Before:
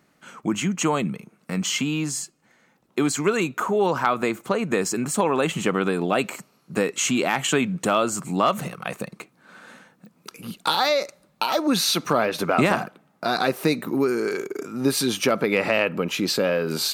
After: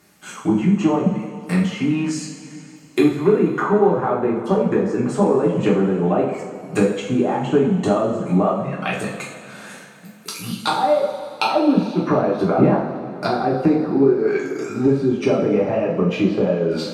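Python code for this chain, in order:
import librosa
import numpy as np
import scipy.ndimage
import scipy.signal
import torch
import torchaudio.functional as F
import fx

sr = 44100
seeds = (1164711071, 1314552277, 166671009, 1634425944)

y = fx.dereverb_blind(x, sr, rt60_s=0.77)
y = fx.env_lowpass_down(y, sr, base_hz=640.0, full_db=-20.5)
y = fx.high_shelf(y, sr, hz=4700.0, db=11.0)
y = fx.rev_double_slope(y, sr, seeds[0], early_s=0.54, late_s=3.0, knee_db=-14, drr_db=-5.0)
y = y * 10.0 ** (1.5 / 20.0)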